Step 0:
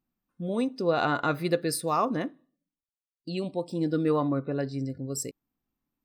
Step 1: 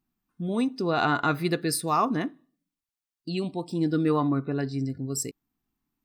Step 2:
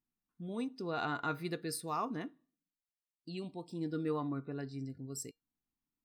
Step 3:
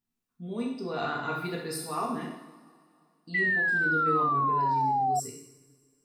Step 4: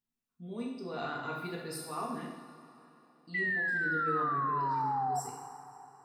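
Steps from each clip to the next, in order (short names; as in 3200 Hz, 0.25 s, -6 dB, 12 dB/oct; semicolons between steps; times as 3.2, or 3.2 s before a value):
bell 540 Hz -14 dB 0.25 oct; gain +3 dB
resonator 470 Hz, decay 0.17 s, harmonics all, mix 50%; gain -7 dB
two-slope reverb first 0.8 s, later 2.6 s, from -18 dB, DRR -3.5 dB; painted sound fall, 3.34–5.2, 720–2000 Hz -26 dBFS
digital reverb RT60 3.8 s, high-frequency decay 0.9×, pre-delay 15 ms, DRR 11.5 dB; gain -6 dB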